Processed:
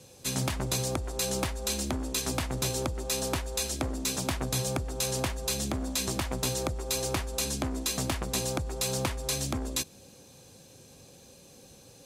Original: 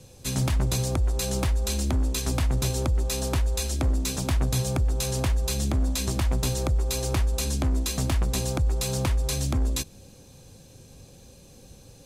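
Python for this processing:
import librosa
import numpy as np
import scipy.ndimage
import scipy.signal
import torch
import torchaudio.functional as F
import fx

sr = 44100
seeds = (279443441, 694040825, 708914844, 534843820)

y = fx.highpass(x, sr, hz=250.0, slope=6)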